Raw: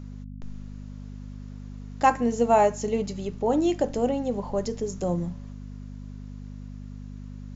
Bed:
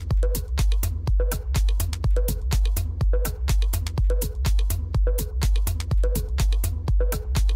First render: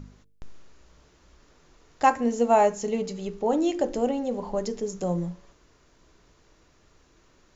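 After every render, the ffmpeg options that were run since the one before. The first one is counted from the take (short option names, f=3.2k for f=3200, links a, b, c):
-af "bandreject=f=50:t=h:w=4,bandreject=f=100:t=h:w=4,bandreject=f=150:t=h:w=4,bandreject=f=200:t=h:w=4,bandreject=f=250:t=h:w=4,bandreject=f=300:t=h:w=4,bandreject=f=350:t=h:w=4,bandreject=f=400:t=h:w=4,bandreject=f=450:t=h:w=4,bandreject=f=500:t=h:w=4,bandreject=f=550:t=h:w=4"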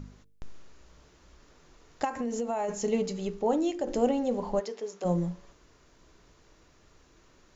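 -filter_complex "[0:a]asplit=3[a][b][c];[a]afade=t=out:st=2.03:d=0.02[d];[b]acompressor=threshold=-27dB:ratio=10:attack=3.2:release=140:knee=1:detection=peak,afade=t=in:st=2.03:d=0.02,afade=t=out:st=2.68:d=0.02[e];[c]afade=t=in:st=2.68:d=0.02[f];[d][e][f]amix=inputs=3:normalize=0,asplit=3[g][h][i];[g]afade=t=out:st=4.59:d=0.02[j];[h]highpass=530,lowpass=4.4k,afade=t=in:st=4.59:d=0.02,afade=t=out:st=5.04:d=0.02[k];[i]afade=t=in:st=5.04:d=0.02[l];[j][k][l]amix=inputs=3:normalize=0,asplit=2[m][n];[m]atrim=end=3.87,asetpts=PTS-STARTPTS,afade=t=out:st=3.26:d=0.61:silence=0.421697[o];[n]atrim=start=3.87,asetpts=PTS-STARTPTS,afade=t=in:d=0.004:c=hsin:silence=0.421697[p];[o][p]concat=n=2:v=0:a=1"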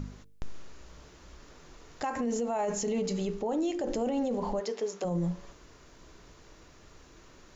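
-filter_complex "[0:a]asplit=2[a][b];[b]acompressor=threshold=-34dB:ratio=6,volume=-1dB[c];[a][c]amix=inputs=2:normalize=0,alimiter=limit=-23.5dB:level=0:latency=1:release=26"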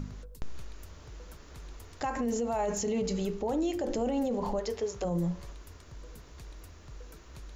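-filter_complex "[1:a]volume=-26dB[a];[0:a][a]amix=inputs=2:normalize=0"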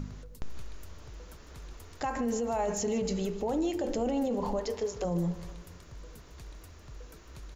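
-af "aecho=1:1:153|306|459|612|765:0.168|0.0873|0.0454|0.0236|0.0123"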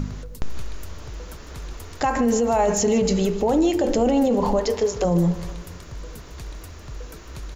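-af "volume=11dB"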